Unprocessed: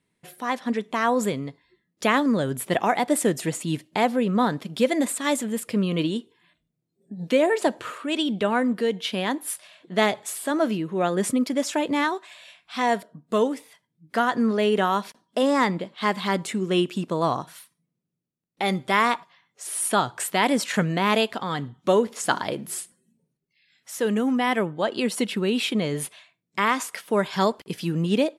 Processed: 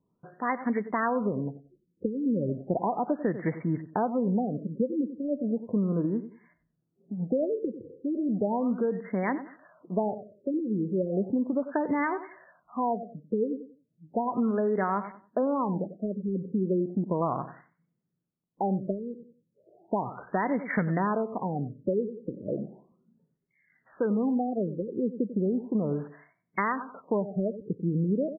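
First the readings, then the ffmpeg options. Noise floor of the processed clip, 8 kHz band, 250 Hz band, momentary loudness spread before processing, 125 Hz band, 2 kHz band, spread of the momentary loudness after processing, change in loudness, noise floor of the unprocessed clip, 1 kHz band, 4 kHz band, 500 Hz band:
−78 dBFS, below −40 dB, −3.5 dB, 9 LU, −2.0 dB, −11.0 dB, 8 LU, −5.5 dB, −79 dBFS, −7.0 dB, below −40 dB, −5.5 dB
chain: -filter_complex "[0:a]equalizer=frequency=190:width=4.7:gain=2.5,asplit=2[link_01][link_02];[link_02]adelay=93,lowpass=frequency=2000:poles=1,volume=-14.5dB,asplit=2[link_03][link_04];[link_04]adelay=93,lowpass=frequency=2000:poles=1,volume=0.26,asplit=2[link_05][link_06];[link_06]adelay=93,lowpass=frequency=2000:poles=1,volume=0.26[link_07];[link_03][link_05][link_07]amix=inputs=3:normalize=0[link_08];[link_01][link_08]amix=inputs=2:normalize=0,acompressor=threshold=-23dB:ratio=6,afftfilt=real='re*lt(b*sr/1024,520*pow(2300/520,0.5+0.5*sin(2*PI*0.35*pts/sr)))':imag='im*lt(b*sr/1024,520*pow(2300/520,0.5+0.5*sin(2*PI*0.35*pts/sr)))':win_size=1024:overlap=0.75"

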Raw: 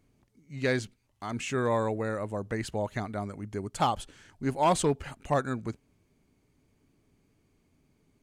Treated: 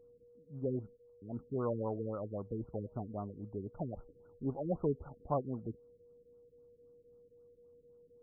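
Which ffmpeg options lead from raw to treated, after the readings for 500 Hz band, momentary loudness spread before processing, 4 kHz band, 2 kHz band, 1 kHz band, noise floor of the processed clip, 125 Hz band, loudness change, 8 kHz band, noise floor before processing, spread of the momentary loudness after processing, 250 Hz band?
−7.5 dB, 13 LU, below −40 dB, below −30 dB, −15.0 dB, −66 dBFS, −6.5 dB, −9.0 dB, below −40 dB, −71 dBFS, 11 LU, −6.5 dB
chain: -af "aeval=exprs='val(0)+0.00251*sin(2*PI*480*n/s)':channel_layout=same,afftfilt=real='re*lt(b*sr/1024,460*pow(1500/460,0.5+0.5*sin(2*PI*3.8*pts/sr)))':imag='im*lt(b*sr/1024,460*pow(1500/460,0.5+0.5*sin(2*PI*3.8*pts/sr)))':win_size=1024:overlap=0.75,volume=-6.5dB"

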